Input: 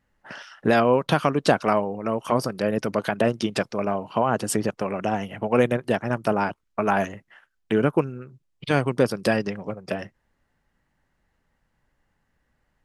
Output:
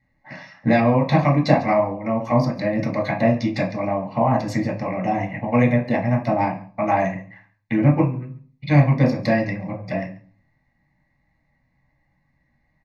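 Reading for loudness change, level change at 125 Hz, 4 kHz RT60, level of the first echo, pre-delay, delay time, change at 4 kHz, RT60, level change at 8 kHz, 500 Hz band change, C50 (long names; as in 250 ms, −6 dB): +3.5 dB, +9.5 dB, 0.40 s, −21.0 dB, 3 ms, 139 ms, −3.0 dB, 0.45 s, below −10 dB, +0.5 dB, 10.5 dB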